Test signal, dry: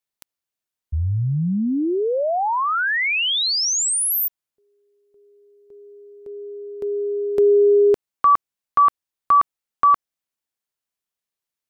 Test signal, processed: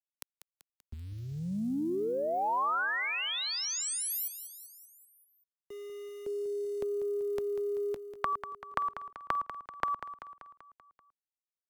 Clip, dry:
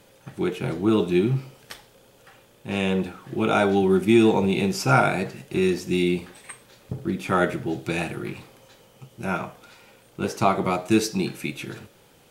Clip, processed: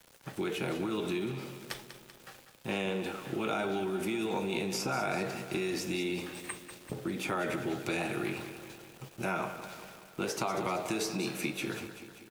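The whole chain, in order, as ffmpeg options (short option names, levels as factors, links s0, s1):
-filter_complex "[0:a]acompressor=threshold=0.0447:ratio=20:attack=11:release=50:detection=peak,aeval=exprs='val(0)*gte(abs(val(0)),0.00355)':c=same,acrossover=split=230|1100[s0][s1][s2];[s0]acompressor=threshold=0.00447:ratio=4[s3];[s1]acompressor=threshold=0.02:ratio=4[s4];[s2]acompressor=threshold=0.0158:ratio=4[s5];[s3][s4][s5]amix=inputs=3:normalize=0,aecho=1:1:193|386|579|772|965|1158:0.282|0.161|0.0916|0.0522|0.0298|0.017,volume=1.12"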